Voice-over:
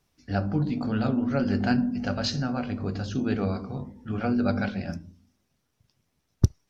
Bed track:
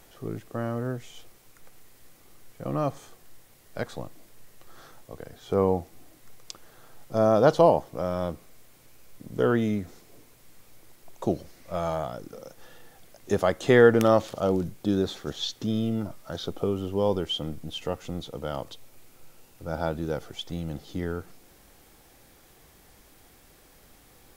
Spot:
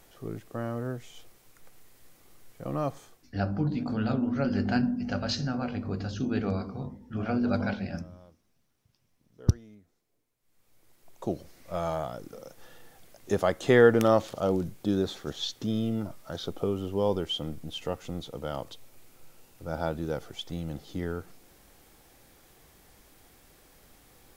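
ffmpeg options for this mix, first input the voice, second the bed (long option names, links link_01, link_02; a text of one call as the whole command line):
ffmpeg -i stem1.wav -i stem2.wav -filter_complex "[0:a]adelay=3050,volume=-2.5dB[link_01];[1:a]volume=20.5dB,afade=type=out:start_time=2.98:duration=0.36:silence=0.0749894,afade=type=in:start_time=10.4:duration=1.31:silence=0.0668344[link_02];[link_01][link_02]amix=inputs=2:normalize=0" out.wav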